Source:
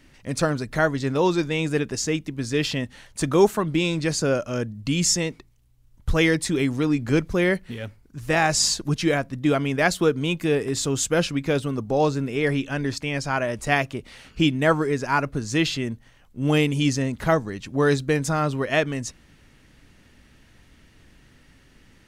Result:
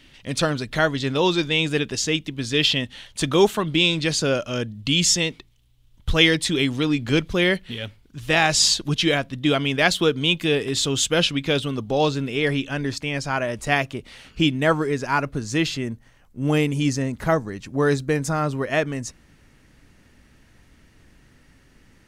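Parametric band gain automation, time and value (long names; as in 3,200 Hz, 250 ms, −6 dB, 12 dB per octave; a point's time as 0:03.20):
parametric band 3,300 Hz 0.81 octaves
0:12.14 +12.5 dB
0:12.85 +3 dB
0:15.31 +3 dB
0:15.87 −3.5 dB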